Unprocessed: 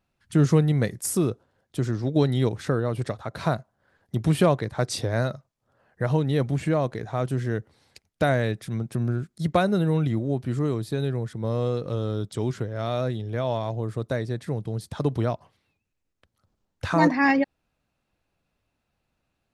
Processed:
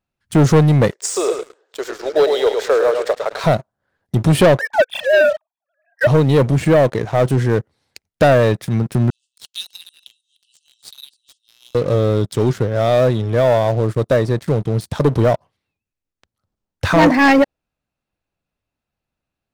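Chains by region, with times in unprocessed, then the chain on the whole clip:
0.91–3.44 s: Chebyshev band-pass 420–7800 Hz, order 4 + upward compressor, threshold -47 dBFS + feedback delay 107 ms, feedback 34%, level -7 dB
4.59–6.07 s: formants replaced by sine waves + steep high-pass 570 Hz 48 dB/octave + comb 1.2 ms, depth 89%
9.10–11.75 s: chunks repeated in reverse 159 ms, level -10 dB + brick-wall FIR band-pass 2.6–10 kHz
whole clip: dynamic bell 550 Hz, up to +6 dB, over -38 dBFS, Q 2; waveshaping leveller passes 3

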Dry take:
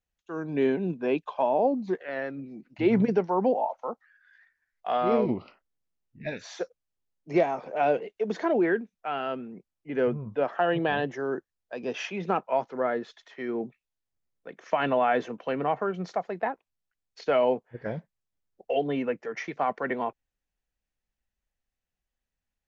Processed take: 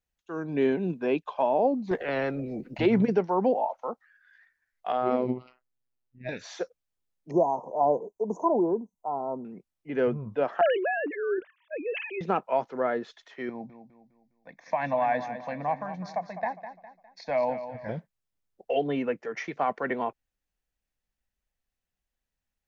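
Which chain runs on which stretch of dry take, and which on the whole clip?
0.72–1.25 s: expander -42 dBFS + tape noise reduction on one side only encoder only
1.91–2.86 s: FFT filter 320 Hz 0 dB, 500 Hz +4 dB, 1.1 kHz -12 dB + spectrum-flattening compressor 2:1
4.92–6.29 s: treble shelf 3.1 kHz -6.5 dB + robot voice 126 Hz
7.31–9.45 s: Chebyshev band-stop 1–6.1 kHz, order 5 + high-order bell 1.5 kHz +9 dB
10.61–12.21 s: formants replaced by sine waves + decay stretcher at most 74 dB/s
13.49–17.89 s: static phaser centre 2 kHz, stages 8 + feedback delay 204 ms, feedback 40%, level -11 dB
whole clip: none

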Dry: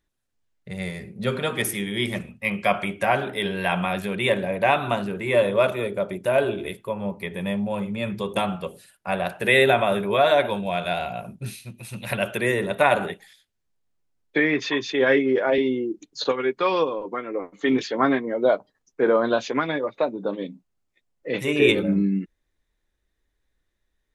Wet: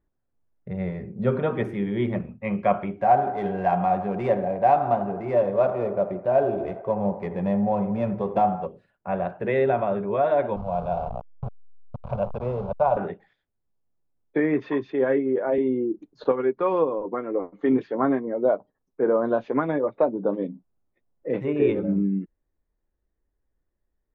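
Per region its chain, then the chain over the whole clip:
2.97–8.66 s: dead-time distortion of 0.099 ms + peaking EQ 740 Hz +11.5 dB 0.24 oct + feedback echo behind a band-pass 83 ms, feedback 66%, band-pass 940 Hz, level -12 dB
10.56–12.97 s: send-on-delta sampling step -25 dBFS + treble shelf 5.5 kHz -11 dB + static phaser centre 770 Hz, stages 4
whole clip: low-pass 1 kHz 12 dB/octave; gain riding within 3 dB 0.5 s

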